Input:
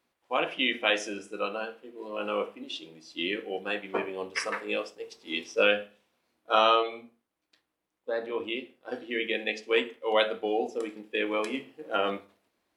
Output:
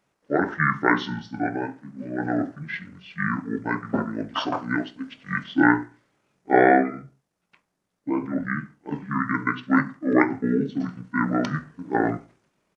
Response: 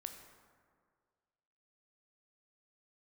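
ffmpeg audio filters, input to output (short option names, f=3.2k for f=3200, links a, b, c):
-af "asetrate=25476,aresample=44100,atempo=1.73107,volume=6dB"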